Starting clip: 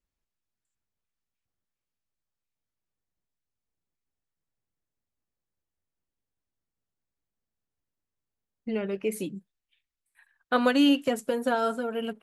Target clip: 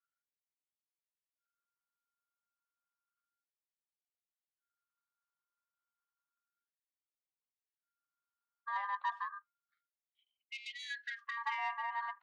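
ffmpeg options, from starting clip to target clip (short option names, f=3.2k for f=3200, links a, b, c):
-af "aeval=exprs='val(0)*sin(2*PI*1400*n/s)':c=same,highpass=f=270:w=0.5412,highpass=f=270:w=1.3066,equalizer=f=280:t=q:w=4:g=6,equalizer=f=400:t=q:w=4:g=9,equalizer=f=630:t=q:w=4:g=-7,equalizer=f=1k:t=q:w=4:g=6,equalizer=f=1.6k:t=q:w=4:g=-4,equalizer=f=2.5k:t=q:w=4:g=-6,lowpass=f=2.7k:w=0.5412,lowpass=f=2.7k:w=1.3066,asoftclip=type=tanh:threshold=-22dB,afftfilt=real='re*gte(b*sr/1024,540*pow(2100/540,0.5+0.5*sin(2*PI*0.31*pts/sr)))':imag='im*gte(b*sr/1024,540*pow(2100/540,0.5+0.5*sin(2*PI*0.31*pts/sr)))':win_size=1024:overlap=0.75,volume=-5dB"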